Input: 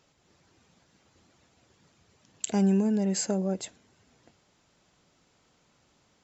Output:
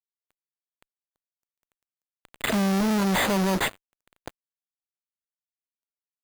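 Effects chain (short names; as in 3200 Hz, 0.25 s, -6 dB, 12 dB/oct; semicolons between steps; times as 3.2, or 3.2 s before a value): careless resampling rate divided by 8×, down none, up hold; fuzz box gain 51 dB, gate -53 dBFS; gain -8.5 dB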